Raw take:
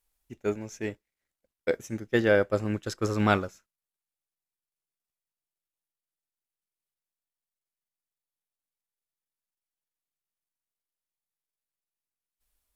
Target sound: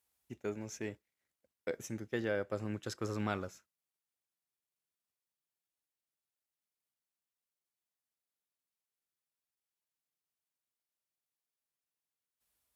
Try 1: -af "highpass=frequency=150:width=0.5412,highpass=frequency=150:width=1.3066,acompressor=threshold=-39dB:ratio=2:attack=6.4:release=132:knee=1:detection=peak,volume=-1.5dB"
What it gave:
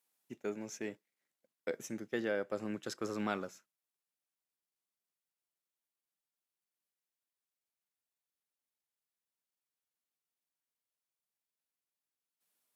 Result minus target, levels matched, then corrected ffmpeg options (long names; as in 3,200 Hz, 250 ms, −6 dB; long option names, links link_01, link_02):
125 Hz band −8.0 dB
-af "highpass=frequency=69:width=0.5412,highpass=frequency=69:width=1.3066,acompressor=threshold=-39dB:ratio=2:attack=6.4:release=132:knee=1:detection=peak,volume=-1.5dB"